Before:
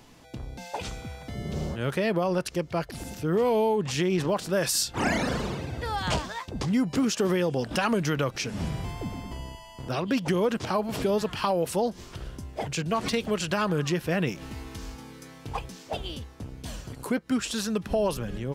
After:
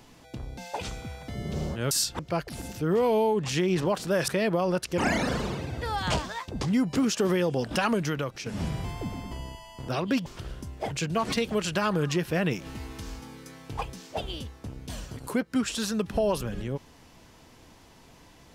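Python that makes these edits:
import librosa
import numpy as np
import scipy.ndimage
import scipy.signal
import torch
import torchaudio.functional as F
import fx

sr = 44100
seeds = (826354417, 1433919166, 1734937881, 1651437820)

y = fx.edit(x, sr, fx.swap(start_s=1.91, length_s=0.7, other_s=4.7, other_length_s=0.28),
    fx.fade_out_to(start_s=7.86, length_s=0.6, floor_db=-8.5),
    fx.cut(start_s=10.26, length_s=1.76), tone=tone)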